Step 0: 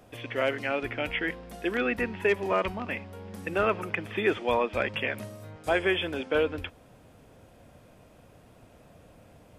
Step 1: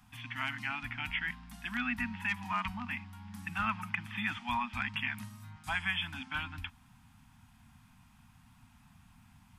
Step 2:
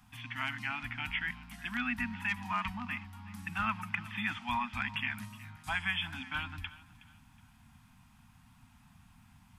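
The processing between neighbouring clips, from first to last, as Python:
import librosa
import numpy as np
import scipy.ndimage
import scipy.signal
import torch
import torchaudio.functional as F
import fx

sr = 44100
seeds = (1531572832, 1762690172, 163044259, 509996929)

y1 = scipy.signal.sosfilt(scipy.signal.ellip(3, 1.0, 50, [240.0, 860.0], 'bandstop', fs=sr, output='sos'), x)
y1 = y1 * librosa.db_to_amplitude(-3.0)
y2 = fx.echo_feedback(y1, sr, ms=369, feedback_pct=33, wet_db=-19.0)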